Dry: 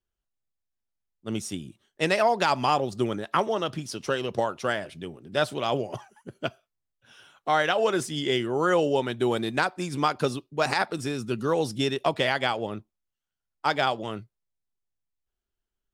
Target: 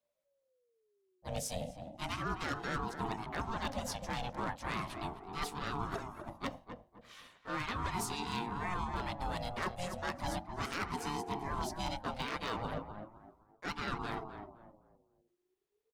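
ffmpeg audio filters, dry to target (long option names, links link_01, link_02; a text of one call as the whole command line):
ffmpeg -i in.wav -filter_complex "[0:a]bandreject=frequency=50:width_type=h:width=6,bandreject=frequency=100:width_type=h:width=6,bandreject=frequency=150:width_type=h:width=6,bandreject=frequency=200:width_type=h:width=6,bandreject=frequency=250:width_type=h:width=6,bandreject=frequency=300:width_type=h:width=6,bandreject=frequency=350:width_type=h:width=6,bandreject=frequency=400:width_type=h:width=6,areverse,acompressor=threshold=-32dB:ratio=12,areverse,asplit=2[link_01][link_02];[link_02]asetrate=55563,aresample=44100,atempo=0.793701,volume=-5dB[link_03];[link_01][link_03]amix=inputs=2:normalize=0,aeval=exprs='0.0562*(abs(mod(val(0)/0.0562+3,4)-2)-1)':channel_layout=same,asplit=2[link_04][link_05];[link_05]adelay=257,lowpass=frequency=1100:poles=1,volume=-7dB,asplit=2[link_06][link_07];[link_07]adelay=257,lowpass=frequency=1100:poles=1,volume=0.34,asplit=2[link_08][link_09];[link_09]adelay=257,lowpass=frequency=1100:poles=1,volume=0.34,asplit=2[link_10][link_11];[link_11]adelay=257,lowpass=frequency=1100:poles=1,volume=0.34[link_12];[link_04][link_06][link_08][link_10][link_12]amix=inputs=5:normalize=0,aeval=exprs='val(0)*sin(2*PI*470*n/s+470*0.25/0.36*sin(2*PI*0.36*n/s))':channel_layout=same" out.wav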